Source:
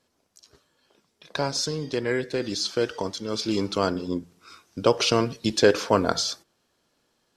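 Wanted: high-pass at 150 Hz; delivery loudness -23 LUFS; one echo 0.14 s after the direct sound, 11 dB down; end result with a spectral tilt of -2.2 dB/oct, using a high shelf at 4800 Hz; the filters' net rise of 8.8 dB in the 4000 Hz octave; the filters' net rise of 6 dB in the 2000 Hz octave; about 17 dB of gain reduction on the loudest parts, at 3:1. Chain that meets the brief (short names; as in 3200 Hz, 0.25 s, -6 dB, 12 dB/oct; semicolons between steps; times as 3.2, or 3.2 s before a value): HPF 150 Hz; bell 2000 Hz +5.5 dB; bell 4000 Hz +6 dB; high shelf 4800 Hz +7 dB; compressor 3:1, threshold -36 dBFS; echo 0.14 s -11 dB; gain +11.5 dB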